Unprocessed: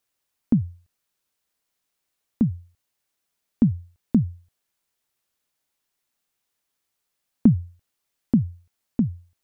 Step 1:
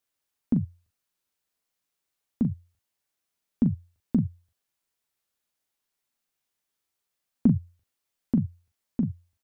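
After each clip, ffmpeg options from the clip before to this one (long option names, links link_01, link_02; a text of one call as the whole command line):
ffmpeg -i in.wav -af "aecho=1:1:12|40:0.251|0.398,volume=-5dB" out.wav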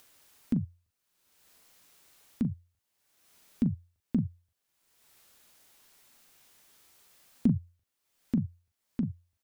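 ffmpeg -i in.wav -af "acompressor=mode=upward:threshold=-36dB:ratio=2.5,volume=-4.5dB" out.wav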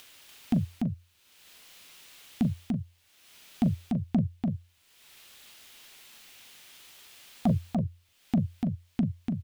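ffmpeg -i in.wav -filter_complex "[0:a]equalizer=frequency=3000:width_type=o:width=1.4:gain=9.5,aeval=exprs='0.188*sin(PI/2*1.78*val(0)/0.188)':channel_layout=same,asplit=2[link_01][link_02];[link_02]aecho=0:1:292:0.631[link_03];[link_01][link_03]amix=inputs=2:normalize=0,volume=-4dB" out.wav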